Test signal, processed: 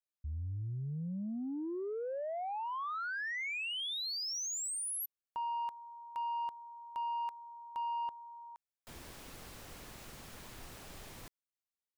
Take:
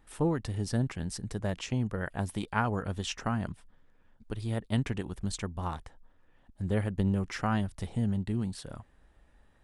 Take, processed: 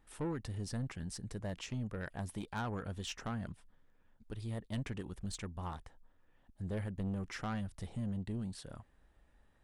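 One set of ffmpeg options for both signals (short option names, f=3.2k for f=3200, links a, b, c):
-af "asoftclip=type=tanh:threshold=-26.5dB,volume=-5.5dB"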